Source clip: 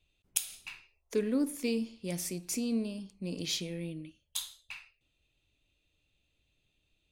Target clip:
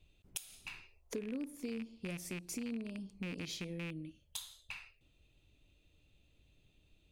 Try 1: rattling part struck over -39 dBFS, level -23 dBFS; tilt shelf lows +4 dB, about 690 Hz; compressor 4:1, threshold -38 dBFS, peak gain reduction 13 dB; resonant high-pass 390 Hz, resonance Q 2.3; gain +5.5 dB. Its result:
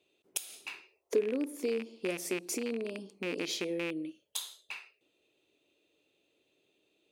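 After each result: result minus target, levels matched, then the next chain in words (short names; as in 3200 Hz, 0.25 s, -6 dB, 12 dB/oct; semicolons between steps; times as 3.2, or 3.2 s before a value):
compressor: peak gain reduction -7.5 dB; 500 Hz band +6.5 dB
rattling part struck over -39 dBFS, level -23 dBFS; tilt shelf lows +4 dB, about 690 Hz; compressor 4:1, threshold -48 dBFS, peak gain reduction 20.5 dB; resonant high-pass 390 Hz, resonance Q 2.3; gain +5.5 dB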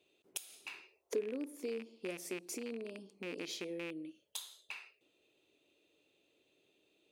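500 Hz band +6.0 dB
rattling part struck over -39 dBFS, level -23 dBFS; tilt shelf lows +4 dB, about 690 Hz; compressor 4:1, threshold -48 dBFS, peak gain reduction 20.5 dB; gain +5.5 dB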